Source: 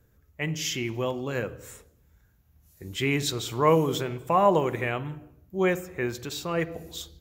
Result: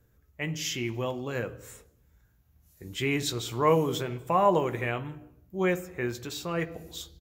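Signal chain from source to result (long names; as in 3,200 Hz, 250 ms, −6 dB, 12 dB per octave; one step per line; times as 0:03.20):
double-tracking delay 17 ms −11.5 dB
level −2.5 dB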